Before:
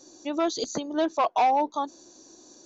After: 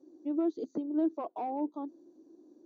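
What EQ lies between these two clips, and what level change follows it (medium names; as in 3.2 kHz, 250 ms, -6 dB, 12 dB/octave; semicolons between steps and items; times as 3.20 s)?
band-pass filter 310 Hz, Q 2.7; 0.0 dB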